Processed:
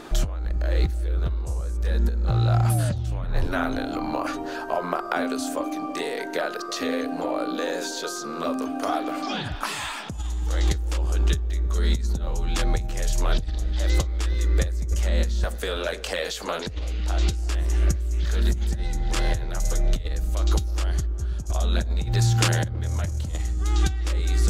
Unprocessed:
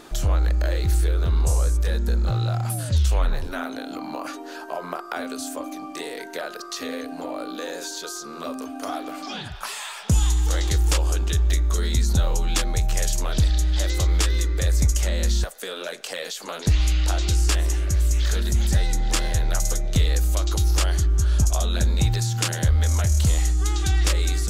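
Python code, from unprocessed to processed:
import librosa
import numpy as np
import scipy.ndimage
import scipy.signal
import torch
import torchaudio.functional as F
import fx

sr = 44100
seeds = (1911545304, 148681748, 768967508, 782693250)

y = fx.high_shelf(x, sr, hz=4300.0, db=-8.0)
y = fx.over_compress(y, sr, threshold_db=-23.0, ratio=-0.5)
y = fx.echo_wet_lowpass(y, sr, ms=327, feedback_pct=48, hz=510.0, wet_db=-12.0)
y = y * 10.0 ** (1.0 / 20.0)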